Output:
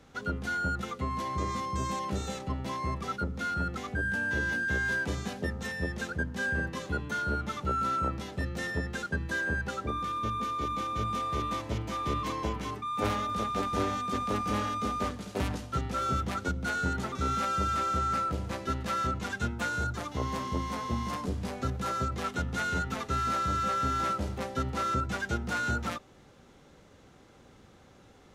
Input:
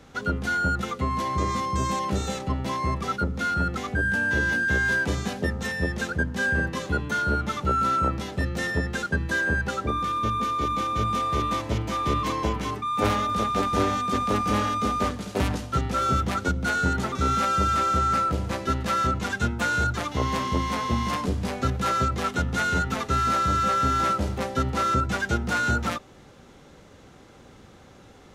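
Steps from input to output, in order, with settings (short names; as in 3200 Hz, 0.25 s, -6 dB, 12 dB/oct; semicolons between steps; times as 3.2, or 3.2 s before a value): 19.68–22.12 dynamic EQ 2600 Hz, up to -4 dB, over -38 dBFS, Q 0.86; gain -6.5 dB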